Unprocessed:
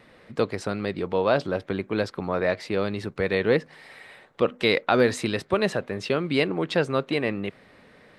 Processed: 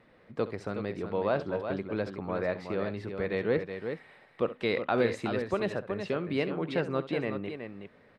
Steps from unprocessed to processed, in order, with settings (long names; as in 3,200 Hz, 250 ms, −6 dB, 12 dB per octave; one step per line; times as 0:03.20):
high-shelf EQ 3,700 Hz −12 dB
on a send: multi-tap delay 67/371 ms −15/−7.5 dB
on the sum: level −6.5 dB